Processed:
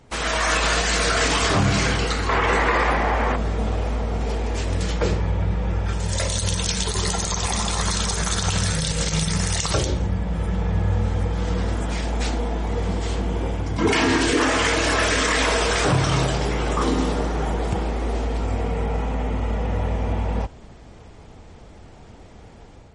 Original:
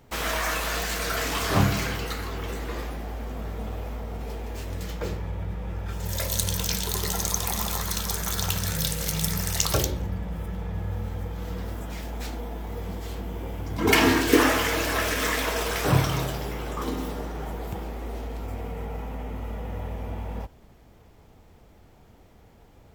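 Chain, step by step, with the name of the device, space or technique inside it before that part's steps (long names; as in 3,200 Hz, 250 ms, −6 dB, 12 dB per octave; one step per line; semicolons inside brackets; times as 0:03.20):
0:02.29–0:03.36: octave-band graphic EQ 500/1,000/2,000 Hz +4/+11/+11 dB
low-bitrate web radio (automatic gain control gain up to 6.5 dB; brickwall limiter −13 dBFS, peak gain reduction 11 dB; level +3.5 dB; MP3 40 kbit/s 48,000 Hz)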